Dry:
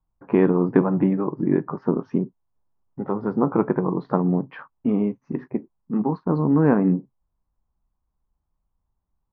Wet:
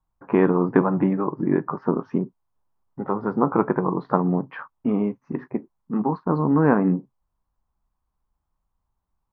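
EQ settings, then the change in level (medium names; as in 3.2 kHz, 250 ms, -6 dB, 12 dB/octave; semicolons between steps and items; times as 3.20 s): peaking EQ 1.2 kHz +6.5 dB 1.7 oct; -1.5 dB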